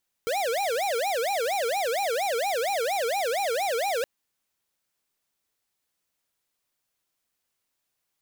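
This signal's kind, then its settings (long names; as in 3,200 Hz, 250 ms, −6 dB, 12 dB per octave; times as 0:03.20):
siren wail 450–814 Hz 4.3 per second square −26.5 dBFS 3.77 s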